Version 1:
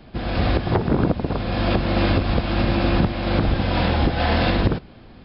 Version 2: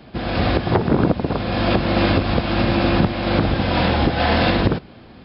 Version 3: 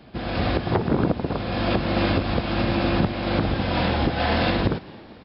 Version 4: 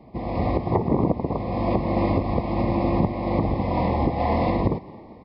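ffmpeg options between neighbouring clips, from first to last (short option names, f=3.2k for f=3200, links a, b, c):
-af "highpass=f=95:p=1,volume=3.5dB"
-filter_complex "[0:a]asplit=5[a][b][c][d][e];[b]adelay=224,afreqshift=51,volume=-23dB[f];[c]adelay=448,afreqshift=102,volume=-27.3dB[g];[d]adelay=672,afreqshift=153,volume=-31.6dB[h];[e]adelay=896,afreqshift=204,volume=-35.9dB[i];[a][f][g][h][i]amix=inputs=5:normalize=0,volume=-4.5dB"
-af "asuperstop=centerf=1500:order=8:qfactor=1.7,highshelf=f=2.2k:t=q:w=3:g=-10"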